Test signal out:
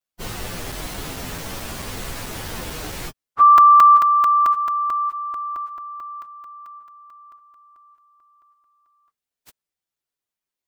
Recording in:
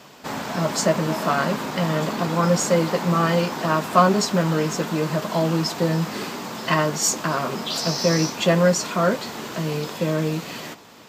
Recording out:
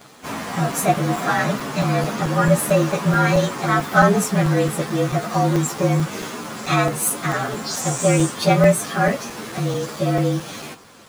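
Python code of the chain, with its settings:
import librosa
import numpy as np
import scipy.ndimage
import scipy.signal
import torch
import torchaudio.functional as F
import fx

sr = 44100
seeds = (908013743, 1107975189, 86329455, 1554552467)

y = fx.partial_stretch(x, sr, pct=112)
y = fx.buffer_crackle(y, sr, first_s=0.72, period_s=0.22, block=128, kind='zero')
y = y * 10.0 ** (4.5 / 20.0)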